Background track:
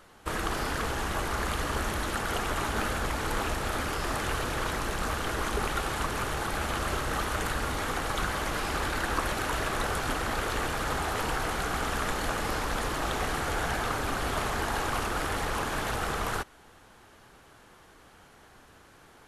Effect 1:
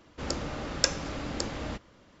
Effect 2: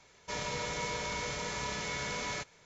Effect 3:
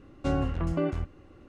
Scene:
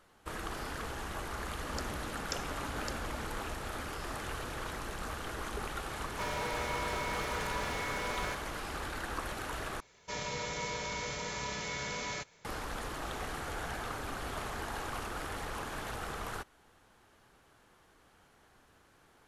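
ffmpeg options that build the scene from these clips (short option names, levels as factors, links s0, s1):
-filter_complex "[2:a]asplit=2[s0][s1];[0:a]volume=0.355[s2];[1:a]alimiter=limit=0.422:level=0:latency=1:release=71[s3];[s0]asplit=2[s4][s5];[s5]highpass=f=720:p=1,volume=25.1,asoftclip=type=tanh:threshold=0.0708[s6];[s4][s6]amix=inputs=2:normalize=0,lowpass=f=1200:p=1,volume=0.501[s7];[s2]asplit=2[s8][s9];[s8]atrim=end=9.804[s10];[s1]atrim=end=2.65,asetpts=PTS-STARTPTS,volume=0.841[s11];[s9]atrim=start=12.446[s12];[s3]atrim=end=2.2,asetpts=PTS-STARTPTS,volume=0.335,afade=t=in:d=0.004:c=hsin,afade=t=out:st=2.196:d=0.004:c=hsin,adelay=1480[s13];[s7]atrim=end=2.65,asetpts=PTS-STARTPTS,volume=0.631,afade=t=in:d=0.004:c=hsin,afade=t=out:st=2.646:d=0.004:c=hsin,adelay=5910[s14];[s10][s11]acrossfade=d=0.004:c1=hsin:c2=hsin[s15];[s15][s12]acrossfade=d=0.004:c1=hsin:c2=hsin[s16];[s16][s13][s14]amix=inputs=3:normalize=0"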